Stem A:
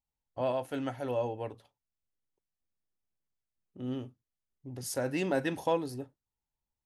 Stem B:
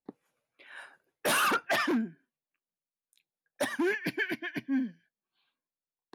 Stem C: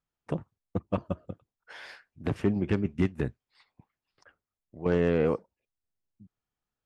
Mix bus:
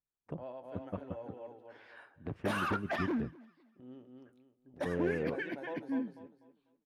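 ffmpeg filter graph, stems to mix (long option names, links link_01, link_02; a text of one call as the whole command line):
ffmpeg -i stem1.wav -i stem2.wav -i stem3.wav -filter_complex "[0:a]highpass=190,volume=-13.5dB,asplit=2[link_01][link_02];[link_02]volume=-3.5dB[link_03];[1:a]adelay=1200,volume=-5dB,asplit=2[link_04][link_05];[link_05]volume=-22.5dB[link_06];[2:a]volume=-10.5dB[link_07];[link_03][link_06]amix=inputs=2:normalize=0,aecho=0:1:247|494|741|988:1|0.29|0.0841|0.0244[link_08];[link_01][link_04][link_07][link_08]amix=inputs=4:normalize=0,lowpass=frequency=1400:poles=1" out.wav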